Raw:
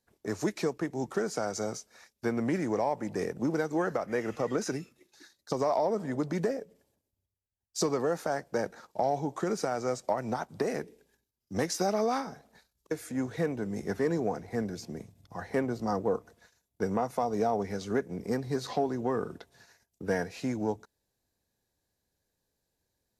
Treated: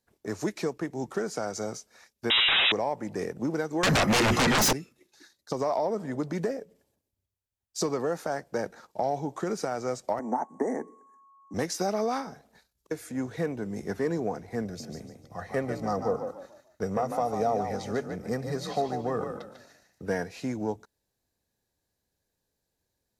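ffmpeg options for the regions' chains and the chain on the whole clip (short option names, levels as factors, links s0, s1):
-filter_complex "[0:a]asettb=1/sr,asplit=3[s0][s1][s2];[s0]atrim=end=2.304[s3];[s1]atrim=start=2.3:end=2.72,asetpts=PTS-STARTPTS,afade=t=in:d=0.004:c=qsin,afade=t=out:st=0.416:d=0.004:c=qsin,aeval=exprs='0.112*sin(PI/2*8.91*val(0)/0.112)':c=same,lowpass=f=3300:t=q:w=0.5098,lowpass=f=3300:t=q:w=0.6013,lowpass=f=3300:t=q:w=0.9,lowpass=f=3300:t=q:w=2.563,afreqshift=-3900[s4];[s2]atrim=start=2.716[s5];[s3][s4]acrossfade=d=0.004:c1=hsin:c2=qsin[s6];[s6][s5]acrossfade=d=0.004:c1=qsin:c2=hsin,asettb=1/sr,asplit=3[s7][s8][s9];[s7]atrim=end=3.834[s10];[s8]atrim=start=3.83:end=4.73,asetpts=PTS-STARTPTS,afade=t=in:d=0.004:c=qsin,afade=t=out:st=0.896:d=0.004:c=qsin,bandreject=f=60:t=h:w=6,bandreject=f=120:t=h:w=6,bandreject=f=180:t=h:w=6,bandreject=f=240:t=h:w=6,bandreject=f=300:t=h:w=6,bandreject=f=360:t=h:w=6,bandreject=f=420:t=h:w=6,aecho=1:1:1:0.42,atrim=end_sample=39690,aeval=exprs='0.112*sin(PI/2*7.08*val(0)/0.112)':c=same[s11];[s9]atrim=start=4.726[s12];[s10][s11]acrossfade=d=0.004:c1=hsin:c2=qsin[s13];[s13][s12]acrossfade=d=0.004:c1=qsin:c2=hsin,asettb=1/sr,asplit=3[s14][s15][s16];[s14]atrim=end=10.194[s17];[s15]atrim=start=10.19:end=11.54,asetpts=PTS-STARTPTS,afade=t=in:d=0.004:c=qsin,afade=t=out:st=1.346:d=0.004:c=qsin,aeval=exprs='val(0)+0.00178*sin(2*PI*1100*n/s)':c=same,asuperstop=centerf=3600:order=12:qfactor=0.92,highpass=f=210:w=0.5412,highpass=f=210:w=1.3066,equalizer=f=260:t=q:w=4:g=8,equalizer=f=860:t=q:w=4:g=10,equalizer=f=1400:t=q:w=4:g=-10,equalizer=f=2700:t=q:w=4:g=-9,equalizer=f=4600:t=q:w=4:g=-8,lowpass=f=8900:w=0.5412,lowpass=f=8900:w=1.3066[s18];[s16]atrim=start=11.536[s19];[s17][s18]acrossfade=d=0.004:c1=hsin:c2=qsin[s20];[s20][s19]acrossfade=d=0.004:c1=qsin:c2=hsin,asettb=1/sr,asplit=3[s21][s22][s23];[s21]atrim=end=14.654[s24];[s22]atrim=start=14.65:end=20.06,asetpts=PTS-STARTPTS,afade=t=in:d=0.004:c=qsin,afade=t=out:st=5.406:d=0.004:c=qsin,aecho=1:1:1.6:0.4,atrim=end_sample=238581,asplit=5[s25][s26][s27][s28][s29];[s26]adelay=147,afreqshift=40,volume=0.447[s30];[s27]adelay=294,afreqshift=80,volume=0.143[s31];[s28]adelay=441,afreqshift=120,volume=0.0457[s32];[s29]adelay=588,afreqshift=160,volume=0.0146[s33];[s25][s30][s31][s32][s33]amix=inputs=5:normalize=0,atrim=end_sample=238581[s34];[s23]atrim=start=20.056[s35];[s24][s34]acrossfade=d=0.004:c1=hsin:c2=qsin[s36];[s36][s35]acrossfade=d=0.004:c1=qsin:c2=hsin"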